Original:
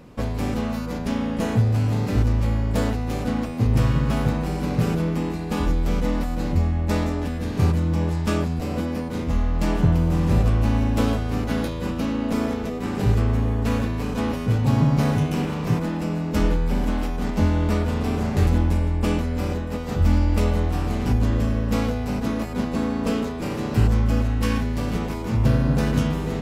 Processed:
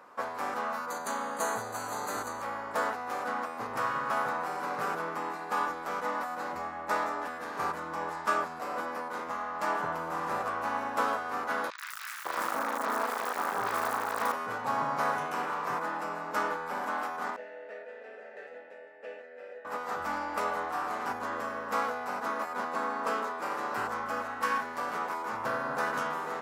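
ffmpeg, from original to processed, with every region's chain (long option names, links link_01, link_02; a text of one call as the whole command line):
ffmpeg -i in.wav -filter_complex "[0:a]asettb=1/sr,asplit=3[link_01][link_02][link_03];[link_01]atrim=end=0.904[link_04];[link_02]atrim=start=0.9:end=2.42,asetpts=PTS-STARTPTS,afade=type=in:duration=0.004:curve=qsin,afade=type=out:start_time=1.516:duration=0.004:curve=qsin,asuperstop=centerf=5300:order=12:qfactor=4.3,highshelf=frequency=4000:width_type=q:width=1.5:gain=11[link_05];[link_03]atrim=start=2.416[link_06];[link_04][link_05]acrossfade=duration=0.004:curve1=hsin:curve2=qsin[link_07];[link_07][link_06]acrossfade=duration=0.004:curve1=qsin:curve2=hsin,asettb=1/sr,asplit=3[link_08][link_09][link_10];[link_08]atrim=end=11.704[link_11];[link_09]atrim=start=11.7:end=14.32,asetpts=PTS-STARTPTS,afade=type=in:duration=0.004:curve=qsin,afade=type=out:start_time=2.616:duration=0.004:curve=qsin,asuperstop=centerf=3000:order=20:qfactor=4.9,acrusher=bits=5:dc=4:mix=0:aa=0.000001,acrossover=split=1700|5300[link_12][link_13][link_14];[link_14]adelay=80[link_15];[link_12]adelay=550[link_16];[link_16][link_13][link_15]amix=inputs=3:normalize=0,atrim=end_sample=115542[link_17];[link_10]atrim=start=14.316[link_18];[link_11][link_17]acrossfade=duration=0.004:curve1=hsin:curve2=qsin[link_19];[link_19][link_18]acrossfade=duration=0.004:curve1=qsin:curve2=hsin,asettb=1/sr,asplit=3[link_20][link_21][link_22];[link_20]atrim=end=17.364[link_23];[link_21]atrim=start=17.36:end=19.65,asetpts=PTS-STARTPTS,afade=type=in:duration=0.004:curve=qsin,afade=type=out:start_time=2.286:duration=0.004:curve=qsin,asplit=3[link_24][link_25][link_26];[link_24]bandpass=frequency=530:width_type=q:width=8,volume=0dB[link_27];[link_25]bandpass=frequency=1840:width_type=q:width=8,volume=-6dB[link_28];[link_26]bandpass=frequency=2480:width_type=q:width=8,volume=-9dB[link_29];[link_27][link_28][link_29]amix=inputs=3:normalize=0,aecho=1:1:4.5:0.45,atrim=end_sample=100989[link_30];[link_22]atrim=start=19.646[link_31];[link_23][link_30]acrossfade=duration=0.004:curve1=hsin:curve2=qsin[link_32];[link_32][link_31]acrossfade=duration=0.004:curve1=qsin:curve2=hsin,highpass=1100,highshelf=frequency=1900:width_type=q:width=1.5:gain=-12.5,volume=5.5dB" out.wav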